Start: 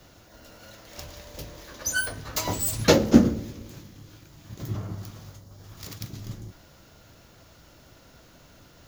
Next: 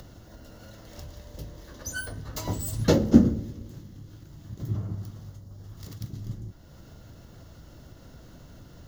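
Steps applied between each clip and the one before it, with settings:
low-shelf EQ 380 Hz +11.5 dB
notch filter 2,400 Hz, Q 6.2
upward compression, threshold −31 dBFS
level −8.5 dB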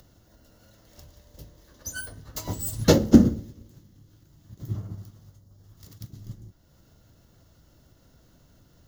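high-shelf EQ 5,400 Hz +7 dB
boost into a limiter +5.5 dB
expander for the loud parts 1.5 to 1, over −38 dBFS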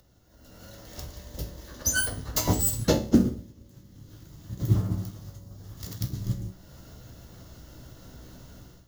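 automatic gain control gain up to 16.5 dB
tuned comb filter 62 Hz, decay 0.37 s, harmonics all, mix 70%
noise that follows the level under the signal 32 dB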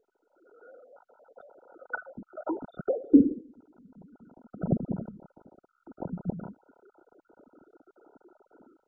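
three sine waves on the formant tracks
treble cut that deepens with the level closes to 530 Hz, closed at −24 dBFS
level −1 dB
MP2 8 kbit/s 16,000 Hz

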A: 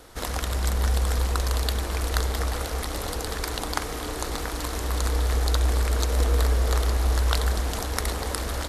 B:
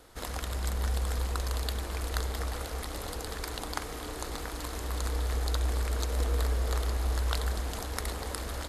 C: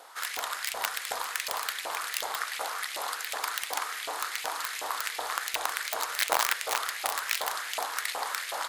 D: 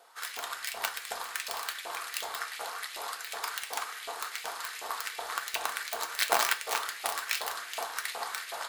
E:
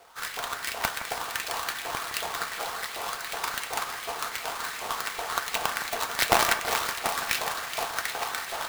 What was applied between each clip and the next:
notch filter 5,700 Hz, Q 22; level −7 dB
wrap-around overflow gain 21.5 dB; auto-filter high-pass saw up 2.7 Hz 680–2,500 Hz; level +5 dB
on a send at −4 dB: convolution reverb RT60 0.35 s, pre-delay 3 ms; on the sum: expander for the loud parts 1.5 to 1, over −41 dBFS
each half-wave held at its own peak; echo with a time of its own for lows and highs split 2,300 Hz, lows 164 ms, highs 460 ms, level −10.5 dB

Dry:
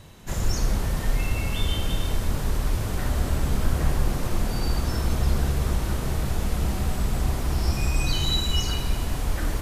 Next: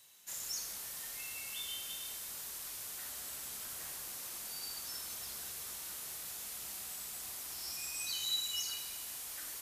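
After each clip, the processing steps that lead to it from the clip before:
first difference
level −3 dB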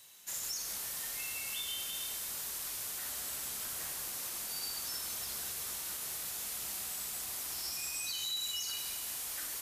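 brickwall limiter −33 dBFS, peak gain reduction 8 dB
level +4.5 dB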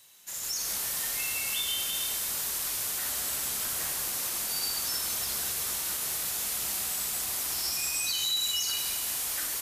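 automatic gain control gain up to 8 dB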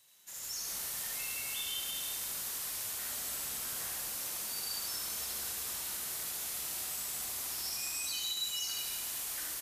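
single-tap delay 76 ms −3 dB
level −8.5 dB

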